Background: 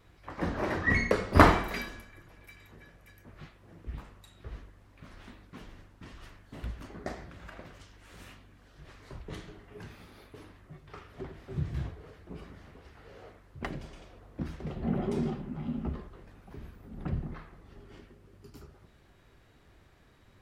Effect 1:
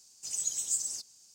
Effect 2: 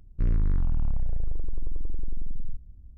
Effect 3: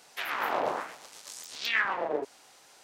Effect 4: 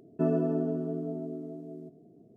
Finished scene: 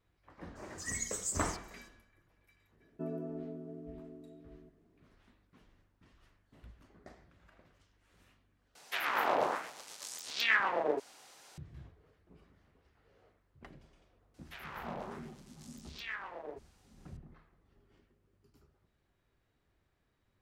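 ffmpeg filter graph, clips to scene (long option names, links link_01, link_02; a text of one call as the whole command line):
ffmpeg -i bed.wav -i cue0.wav -i cue1.wav -i cue2.wav -i cue3.wav -filter_complex "[3:a]asplit=2[link_01][link_02];[0:a]volume=-16.5dB,asplit=2[link_03][link_04];[link_03]atrim=end=8.754[link_05];[link_01]atrim=end=2.83,asetpts=PTS-STARTPTS,volume=-1dB[link_06];[link_04]atrim=start=11.576[link_07];[1:a]atrim=end=1.34,asetpts=PTS-STARTPTS,volume=-6.5dB,afade=type=in:duration=0.02,afade=type=out:start_time=1.32:duration=0.02,adelay=550[link_08];[4:a]atrim=end=2.36,asetpts=PTS-STARTPTS,volume=-13dB,afade=type=in:duration=0.004:curve=hsin,afade=type=out:start_time=2.356:duration=0.004:curve=hsin,adelay=2800[link_09];[link_02]atrim=end=2.83,asetpts=PTS-STARTPTS,volume=-14.5dB,afade=type=in:duration=0.004:curve=hsin,afade=type=out:start_time=2.826:duration=0.004:curve=hsin,adelay=14340[link_10];[link_05][link_06]acrossfade=duration=0.004:curve1=hsin:curve2=hsin[link_11];[link_11][link_07]acrossfade=duration=0.004:curve1=hsin:curve2=hsin[link_12];[link_12][link_08][link_09][link_10]amix=inputs=4:normalize=0" out.wav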